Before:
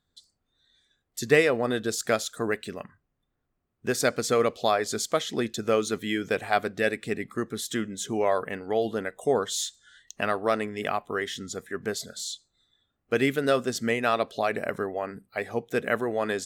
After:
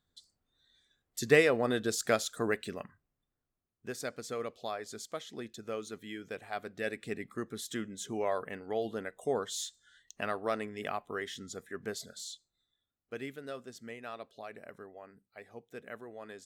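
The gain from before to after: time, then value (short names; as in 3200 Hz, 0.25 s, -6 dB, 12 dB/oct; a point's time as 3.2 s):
2.76 s -3.5 dB
4.06 s -14.5 dB
6.55 s -14.5 dB
7.01 s -8 dB
12.14 s -8 dB
13.44 s -19 dB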